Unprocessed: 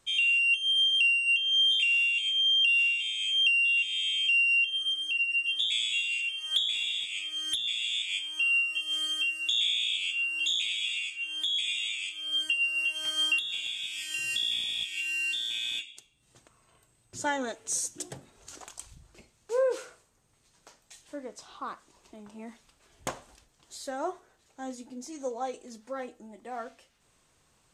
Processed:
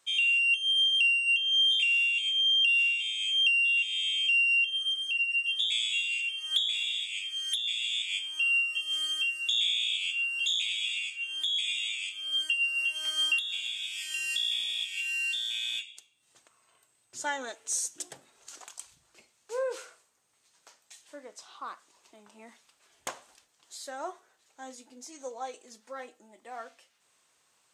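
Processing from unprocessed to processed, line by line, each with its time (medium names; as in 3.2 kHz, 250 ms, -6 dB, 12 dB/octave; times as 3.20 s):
6.97–7.92 s: high-order bell 530 Hz -10.5 dB 2.7 oct
whole clip: high-pass 860 Hz 6 dB/octave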